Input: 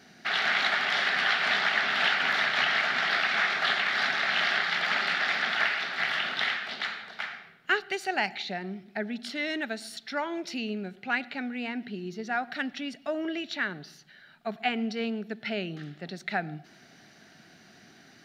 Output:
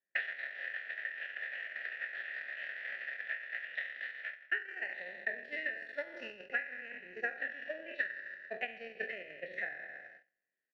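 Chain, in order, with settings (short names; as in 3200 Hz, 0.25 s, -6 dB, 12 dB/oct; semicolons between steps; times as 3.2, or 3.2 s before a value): spectral trails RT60 2.57 s; bell 1800 Hz +10 dB 1.1 oct; on a send: frequency-shifting echo 0.131 s, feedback 52%, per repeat -78 Hz, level -22.5 dB; on the sum: vocal rider within 4 dB 0.5 s; low-pass opened by the level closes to 2800 Hz, open at -24.5 dBFS; vowel filter e; de-hum 53.76 Hz, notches 4; compressor 16:1, threshold -40 dBFS, peak gain reduction 19.5 dB; gate -41 dBFS, range -49 dB; tempo 1.7×; low shelf 470 Hz +6.5 dB; gain +10.5 dB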